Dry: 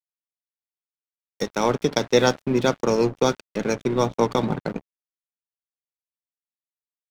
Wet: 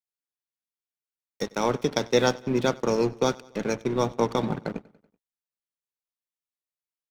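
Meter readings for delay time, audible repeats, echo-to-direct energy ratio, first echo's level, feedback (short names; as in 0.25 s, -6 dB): 95 ms, 3, -22.0 dB, -23.5 dB, 58%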